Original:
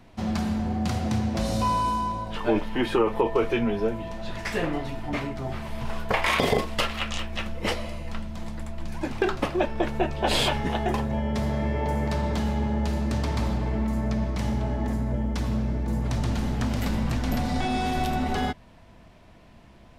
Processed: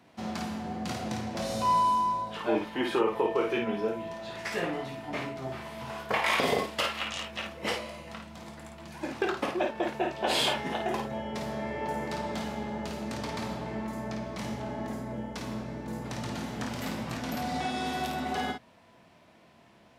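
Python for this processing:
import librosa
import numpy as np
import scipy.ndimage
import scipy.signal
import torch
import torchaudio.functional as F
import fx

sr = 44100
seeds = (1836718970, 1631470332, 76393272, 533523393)

p1 = scipy.signal.sosfilt(scipy.signal.butter(2, 97.0, 'highpass', fs=sr, output='sos'), x)
p2 = fx.low_shelf(p1, sr, hz=150.0, db=-11.0)
p3 = p2 + fx.room_early_taps(p2, sr, ms=(23, 53), db=(-9.0, -5.0), dry=0)
y = p3 * 10.0 ** (-4.0 / 20.0)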